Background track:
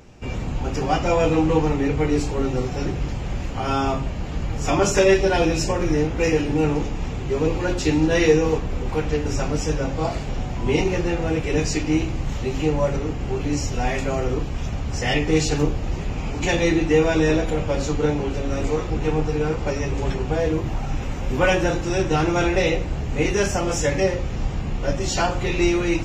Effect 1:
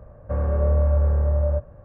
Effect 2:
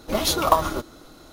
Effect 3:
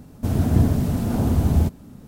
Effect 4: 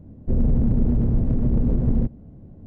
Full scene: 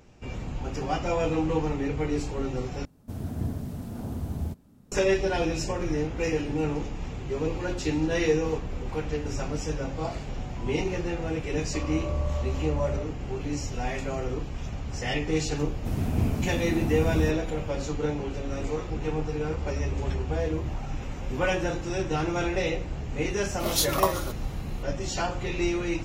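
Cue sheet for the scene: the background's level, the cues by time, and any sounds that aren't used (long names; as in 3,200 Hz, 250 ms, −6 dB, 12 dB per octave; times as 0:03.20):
background track −7.5 dB
0:02.85: overwrite with 3 −13.5 dB
0:11.44: mix in 1 −11.5 dB + low-pass with resonance 1,100 Hz, resonance Q 3.1
0:15.62: mix in 3 −8.5 dB
0:19.14: mix in 1 −13 dB + flat-topped bell 880 Hz −15 dB
0:23.51: mix in 2 −8.5 dB + high-shelf EQ 3,700 Hz +9.5 dB
not used: 4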